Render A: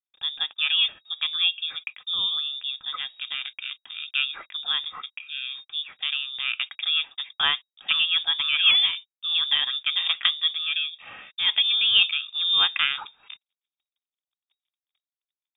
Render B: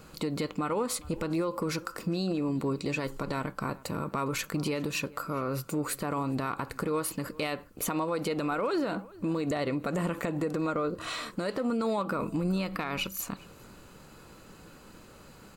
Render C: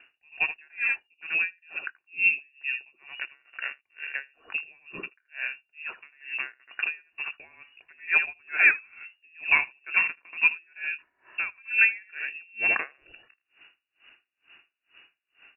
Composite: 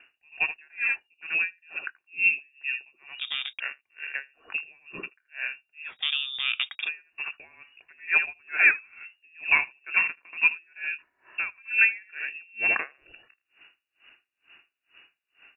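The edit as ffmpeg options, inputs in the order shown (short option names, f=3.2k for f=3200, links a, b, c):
-filter_complex "[0:a]asplit=2[a][b];[2:a]asplit=3[c][d][e];[c]atrim=end=3.192[f];[a]atrim=start=3.188:end=3.602[g];[d]atrim=start=3.598:end=5.94[h];[b]atrim=start=5.84:end=6.89[i];[e]atrim=start=6.79[j];[f][g]acrossfade=d=0.004:c1=hsin:c2=hsin[k];[k][h]acrossfade=d=0.004:c1=hsin:c2=hsin[l];[l][i]acrossfade=d=0.1:c1=tri:c2=tri[m];[m][j]acrossfade=d=0.1:c1=tri:c2=tri"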